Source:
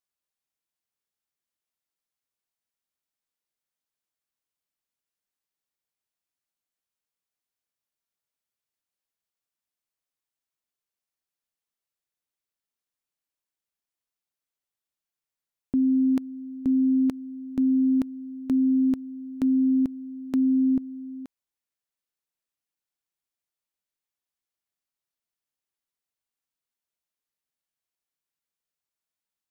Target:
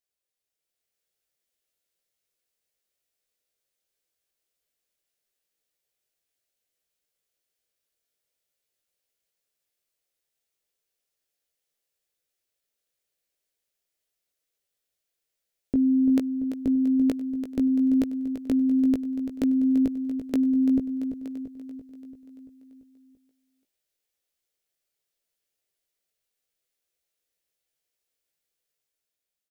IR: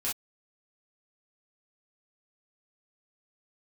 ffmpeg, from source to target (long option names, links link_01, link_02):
-filter_complex "[0:a]equalizer=frequency=125:width_type=o:width=1:gain=-4,equalizer=frequency=250:width_type=o:width=1:gain=-6,equalizer=frequency=500:width_type=o:width=1:gain=7,equalizer=frequency=1000:width_type=o:width=1:gain=-10,dynaudnorm=framelen=110:gausssize=13:maxgain=5.5dB,asplit=2[link_01][link_02];[link_02]adelay=18,volume=-4.5dB[link_03];[link_01][link_03]amix=inputs=2:normalize=0,aecho=1:1:339|678|1017|1356|1695|2034|2373:0.316|0.187|0.11|0.0649|0.0383|0.0226|0.0133"